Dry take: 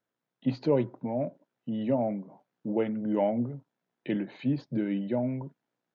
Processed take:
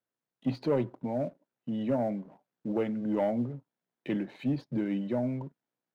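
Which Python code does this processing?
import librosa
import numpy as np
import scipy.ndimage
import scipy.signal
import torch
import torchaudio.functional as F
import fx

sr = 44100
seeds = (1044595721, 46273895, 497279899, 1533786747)

y = fx.leveller(x, sr, passes=1)
y = y * 10.0 ** (-4.5 / 20.0)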